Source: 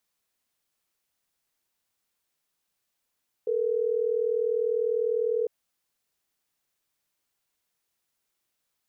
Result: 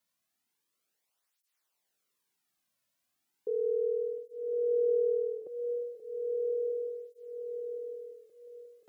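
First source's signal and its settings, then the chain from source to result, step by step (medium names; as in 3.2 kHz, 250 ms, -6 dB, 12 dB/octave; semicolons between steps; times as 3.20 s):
call progress tone ringback tone, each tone -26 dBFS
peak limiter -24.5 dBFS; on a send: echo with a slow build-up 177 ms, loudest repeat 5, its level -13 dB; on the sum: cancelling through-zero flanger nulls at 0.35 Hz, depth 2.6 ms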